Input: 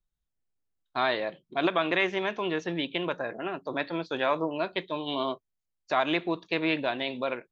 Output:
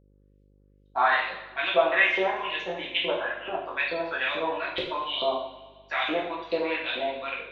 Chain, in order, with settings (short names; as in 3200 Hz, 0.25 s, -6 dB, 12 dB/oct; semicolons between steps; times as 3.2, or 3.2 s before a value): LFO band-pass saw up 2.3 Hz 470–4400 Hz; two-slope reverb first 0.6 s, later 1.8 s, from -16 dB, DRR -6 dB; buzz 50 Hz, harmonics 11, -64 dBFS -5 dB/oct; gain +3.5 dB